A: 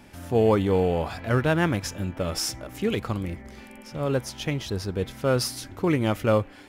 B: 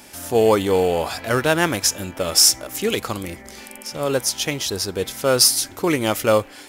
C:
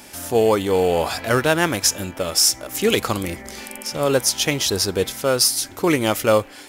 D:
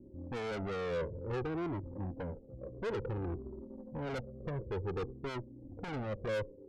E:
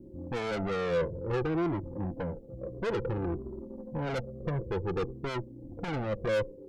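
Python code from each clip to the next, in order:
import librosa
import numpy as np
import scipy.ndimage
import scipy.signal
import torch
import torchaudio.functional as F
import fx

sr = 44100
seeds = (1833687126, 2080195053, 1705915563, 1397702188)

y1 = fx.bass_treble(x, sr, bass_db=-10, treble_db=12)
y1 = y1 * librosa.db_to_amplitude(6.0)
y2 = fx.rider(y1, sr, range_db=4, speed_s=0.5)
y3 = scipy.signal.sosfilt(scipy.signal.cheby1(6, 3, 540.0, 'lowpass', fs=sr, output='sos'), y2)
y3 = fx.tube_stage(y3, sr, drive_db=32.0, bias=0.25)
y3 = fx.comb_cascade(y3, sr, direction='falling', hz=0.56)
y3 = y3 * librosa.db_to_amplitude(2.0)
y4 = y3 + 0.31 * np.pad(y3, (int(5.9 * sr / 1000.0), 0))[:len(y3)]
y4 = y4 * librosa.db_to_amplitude(5.5)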